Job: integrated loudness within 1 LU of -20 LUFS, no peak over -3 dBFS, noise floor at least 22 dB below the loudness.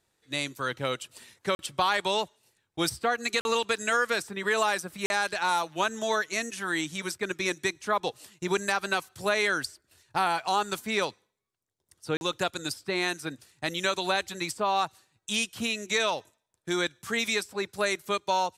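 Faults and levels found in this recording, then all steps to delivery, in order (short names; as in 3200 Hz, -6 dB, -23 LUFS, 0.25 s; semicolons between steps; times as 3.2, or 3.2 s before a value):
dropouts 4; longest dropout 41 ms; loudness -29.0 LUFS; peak -11.0 dBFS; loudness target -20.0 LUFS
-> interpolate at 1.55/3.41/5.06/12.17, 41 ms; gain +9 dB; limiter -3 dBFS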